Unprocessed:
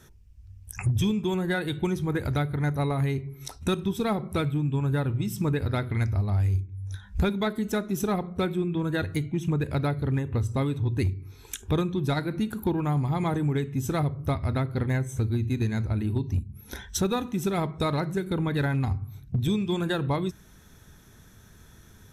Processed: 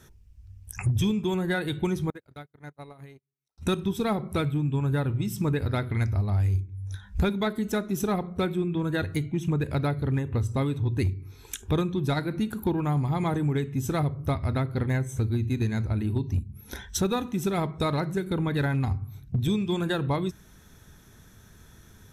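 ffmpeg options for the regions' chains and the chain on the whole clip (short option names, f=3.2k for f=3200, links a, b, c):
-filter_complex "[0:a]asettb=1/sr,asplit=3[a][b][c];[a]atrim=end=2.104[d];[b]atrim=start=2.1:end=3.58,asetpts=PTS-STARTPTS,afade=t=in:d=0.004:c=qsin,afade=t=out:st=1.476:d=0.004:c=qsin,lowshelf=f=140:g=-10,acompressor=threshold=-40dB:ratio=2:attack=3.2:release=140:knee=1:detection=peak,agate=range=-46dB:threshold=-36dB:ratio=16:release=100:detection=peak[e];[c]atrim=start=3.576[f];[d][e]acrossfade=d=0.004:c1=hsin:c2=qsin[g];[g][f]acrossfade=d=0.004:c1=qsin:c2=hsin"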